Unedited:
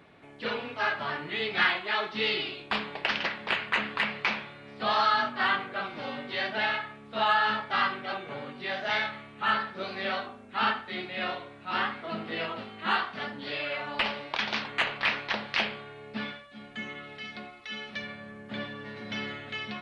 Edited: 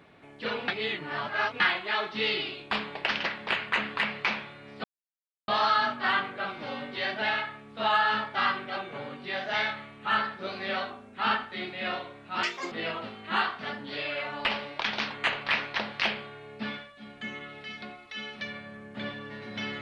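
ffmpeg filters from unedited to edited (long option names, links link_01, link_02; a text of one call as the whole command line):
ffmpeg -i in.wav -filter_complex "[0:a]asplit=6[link_01][link_02][link_03][link_04][link_05][link_06];[link_01]atrim=end=0.682[link_07];[link_02]atrim=start=0.678:end=1.602,asetpts=PTS-STARTPTS,areverse[link_08];[link_03]atrim=start=1.598:end=4.84,asetpts=PTS-STARTPTS,afade=type=out:start_time=3.238:duration=0.004:curve=hsin,apad=pad_dur=0.64[link_09];[link_04]atrim=start=4.84:end=11.794,asetpts=PTS-STARTPTS,afade=type=in:duration=0.004:curve=hsin[link_10];[link_05]atrim=start=11.79:end=12.26,asetpts=PTS-STARTPTS,asetrate=72324,aresample=44100,atrim=end_sample=12638,asetpts=PTS-STARTPTS[link_11];[link_06]atrim=start=12.256[link_12];[link_07][link_08]acrossfade=duration=0.004:curve1=hsin:curve2=hsin[link_13];[link_09][link_10]concat=n=2:v=0:a=1[link_14];[link_13][link_14]acrossfade=duration=0.004:curve1=hsin:curve2=hsin[link_15];[link_15][link_11]acrossfade=duration=0.004:curve1=hsin:curve2=hsin[link_16];[link_16][link_12]acrossfade=duration=0.004:curve1=hsin:curve2=hsin" out.wav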